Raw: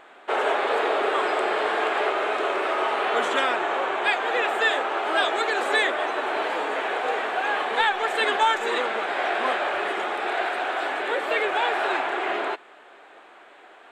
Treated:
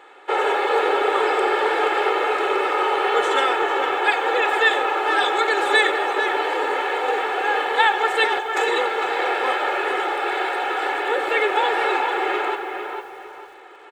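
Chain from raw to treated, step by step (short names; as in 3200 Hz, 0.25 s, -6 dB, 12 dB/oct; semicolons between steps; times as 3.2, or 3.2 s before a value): HPF 160 Hz 12 dB/oct; comb 2.3 ms, depth 89%; 8.25–8.68 negative-ratio compressor -26 dBFS, ratio -1; tape echo 0.451 s, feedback 35%, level -5 dB, low-pass 2900 Hz; lo-fi delay 92 ms, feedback 35%, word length 7-bit, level -15 dB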